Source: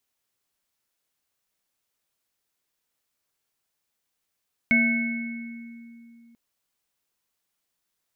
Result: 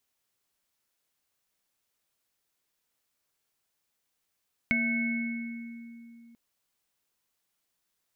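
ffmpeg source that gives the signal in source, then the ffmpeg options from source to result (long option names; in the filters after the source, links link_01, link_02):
-f lavfi -i "aevalsrc='0.1*pow(10,-3*t/3.11)*sin(2*PI*233*t)+0.02*pow(10,-3*t/1.22)*sin(2*PI*659*t)+0.0282*pow(10,-3*t/1.56)*sin(2*PI*1540*t)+0.15*pow(10,-3*t/1.74)*sin(2*PI*2200*t)':duration=1.64:sample_rate=44100"
-af "acompressor=threshold=-25dB:ratio=6"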